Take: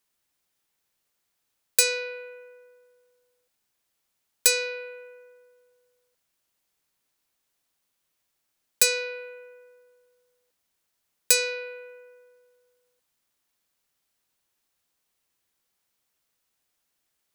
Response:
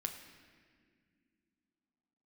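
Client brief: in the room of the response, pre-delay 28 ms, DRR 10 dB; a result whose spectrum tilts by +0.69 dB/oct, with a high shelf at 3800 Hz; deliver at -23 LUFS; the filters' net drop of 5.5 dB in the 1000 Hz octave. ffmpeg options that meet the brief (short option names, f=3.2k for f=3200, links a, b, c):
-filter_complex "[0:a]equalizer=f=1k:t=o:g=-6,highshelf=f=3.8k:g=-9,asplit=2[a][b];[1:a]atrim=start_sample=2205,adelay=28[c];[b][c]afir=irnorm=-1:irlink=0,volume=-9.5dB[d];[a][d]amix=inputs=2:normalize=0,volume=6.5dB"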